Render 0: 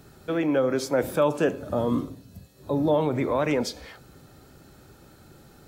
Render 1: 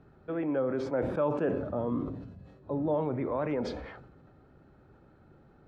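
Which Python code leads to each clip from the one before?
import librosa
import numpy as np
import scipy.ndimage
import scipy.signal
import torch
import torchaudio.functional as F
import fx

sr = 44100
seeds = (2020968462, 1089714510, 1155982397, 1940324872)

y = scipy.signal.sosfilt(scipy.signal.butter(2, 1600.0, 'lowpass', fs=sr, output='sos'), x)
y = fx.sustainer(y, sr, db_per_s=49.0)
y = y * librosa.db_to_amplitude(-7.0)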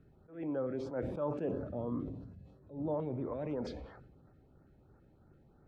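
y = fx.low_shelf(x, sr, hz=130.0, db=5.0)
y = fx.filter_lfo_notch(y, sr, shape='saw_up', hz=3.0, low_hz=810.0, high_hz=3600.0, q=1.1)
y = fx.attack_slew(y, sr, db_per_s=150.0)
y = y * librosa.db_to_amplitude(-6.5)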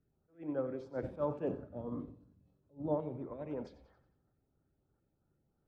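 y = fx.echo_feedback(x, sr, ms=90, feedback_pct=48, wet_db=-11)
y = fx.upward_expand(y, sr, threshold_db=-44.0, expansion=2.5)
y = y * librosa.db_to_amplitude(3.0)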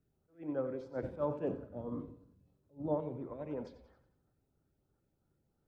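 y = fx.echo_feedback(x, sr, ms=88, feedback_pct=47, wet_db=-17.5)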